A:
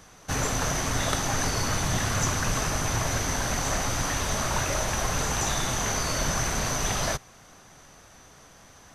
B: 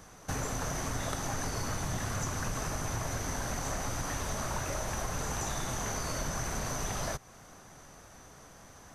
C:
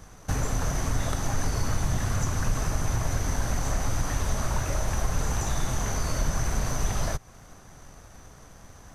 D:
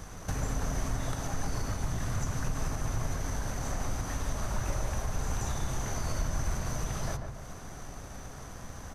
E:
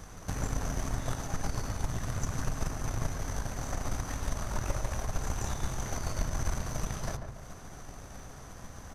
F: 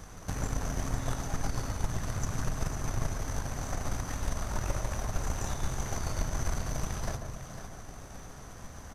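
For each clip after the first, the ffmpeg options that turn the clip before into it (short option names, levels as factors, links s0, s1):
-af "equalizer=f=3300:t=o:w=1.7:g=-5.5,acompressor=threshold=0.0224:ratio=3"
-filter_complex "[0:a]lowshelf=f=110:g=11.5,asplit=2[s0][s1];[s1]aeval=exprs='sgn(val(0))*max(abs(val(0))-0.00422,0)':c=same,volume=0.376[s2];[s0][s2]amix=inputs=2:normalize=0"
-filter_complex "[0:a]acompressor=threshold=0.00708:ratio=2,asplit=2[s0][s1];[s1]adelay=142,lowpass=f=1400:p=1,volume=0.596,asplit=2[s2][s3];[s3]adelay=142,lowpass=f=1400:p=1,volume=0.51,asplit=2[s4][s5];[s5]adelay=142,lowpass=f=1400:p=1,volume=0.51,asplit=2[s6][s7];[s7]adelay=142,lowpass=f=1400:p=1,volume=0.51,asplit=2[s8][s9];[s9]adelay=142,lowpass=f=1400:p=1,volume=0.51,asplit=2[s10][s11];[s11]adelay=142,lowpass=f=1400:p=1,volume=0.51,asplit=2[s12][s13];[s13]adelay=142,lowpass=f=1400:p=1,volume=0.51[s14];[s0][s2][s4][s6][s8][s10][s12][s14]amix=inputs=8:normalize=0,volume=1.68"
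-af "aeval=exprs='0.119*(cos(1*acos(clip(val(0)/0.119,-1,1)))-cos(1*PI/2))+0.0168*(cos(3*acos(clip(val(0)/0.119,-1,1)))-cos(3*PI/2))+0.00841*(cos(4*acos(clip(val(0)/0.119,-1,1)))-cos(4*PI/2))':c=same,volume=1.26"
-af "aecho=1:1:502:0.335"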